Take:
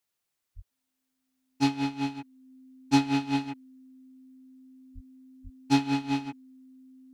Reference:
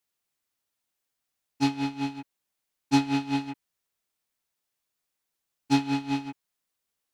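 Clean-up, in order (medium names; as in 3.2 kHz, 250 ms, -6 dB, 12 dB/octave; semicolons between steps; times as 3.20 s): band-stop 260 Hz, Q 30; 0.55–0.67 s: high-pass 140 Hz 24 dB/octave; 4.94–5.06 s: high-pass 140 Hz 24 dB/octave; 5.43–5.55 s: high-pass 140 Hz 24 dB/octave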